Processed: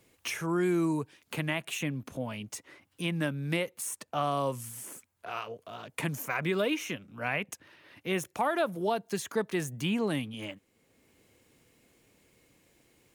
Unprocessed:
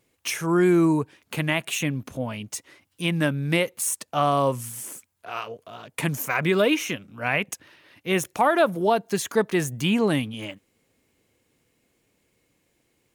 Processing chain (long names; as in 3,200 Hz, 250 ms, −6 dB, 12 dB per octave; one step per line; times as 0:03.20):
multiband upward and downward compressor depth 40%
level −8 dB